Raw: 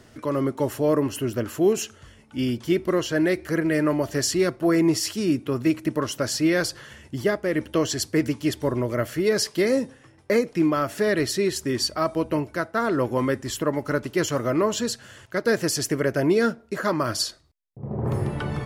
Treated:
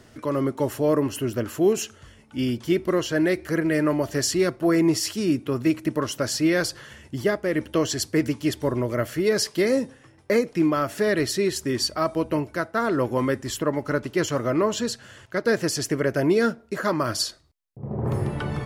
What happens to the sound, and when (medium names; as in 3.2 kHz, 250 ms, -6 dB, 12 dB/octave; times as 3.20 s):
13.58–16.10 s: treble shelf 9 kHz -6 dB